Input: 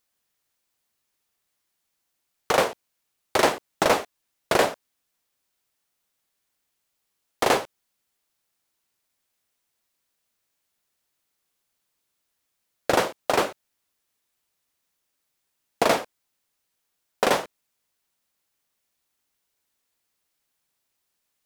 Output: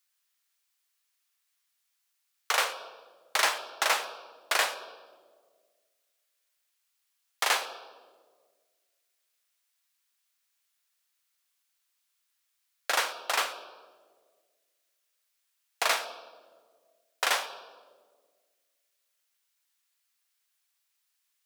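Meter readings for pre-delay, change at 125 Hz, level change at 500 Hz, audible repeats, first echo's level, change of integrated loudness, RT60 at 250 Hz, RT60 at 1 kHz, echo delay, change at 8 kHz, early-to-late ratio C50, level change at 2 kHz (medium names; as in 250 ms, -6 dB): 3 ms, under -35 dB, -14.0 dB, no echo, no echo, -4.5 dB, 2.0 s, 1.4 s, no echo, 0.0 dB, 11.5 dB, -1.0 dB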